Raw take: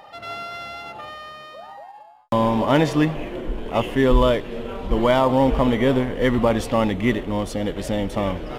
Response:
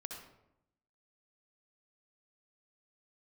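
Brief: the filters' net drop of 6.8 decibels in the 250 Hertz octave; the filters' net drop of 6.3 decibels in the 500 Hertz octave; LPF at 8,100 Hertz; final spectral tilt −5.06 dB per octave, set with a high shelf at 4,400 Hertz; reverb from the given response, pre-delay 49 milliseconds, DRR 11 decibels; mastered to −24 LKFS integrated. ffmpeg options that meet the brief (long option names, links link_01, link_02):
-filter_complex "[0:a]lowpass=8100,equalizer=frequency=250:width_type=o:gain=-6.5,equalizer=frequency=500:width_type=o:gain=-6,highshelf=frequency=4400:gain=-7.5,asplit=2[link_01][link_02];[1:a]atrim=start_sample=2205,adelay=49[link_03];[link_02][link_03]afir=irnorm=-1:irlink=0,volume=-8.5dB[link_04];[link_01][link_04]amix=inputs=2:normalize=0,volume=1.5dB"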